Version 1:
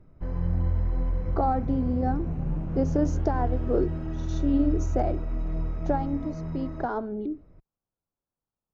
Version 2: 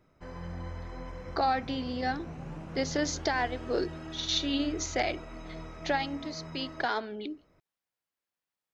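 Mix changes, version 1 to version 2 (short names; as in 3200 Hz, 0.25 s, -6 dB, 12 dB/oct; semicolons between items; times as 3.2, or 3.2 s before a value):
speech: add band shelf 2900 Hz +15.5 dB; master: add tilt +4 dB/oct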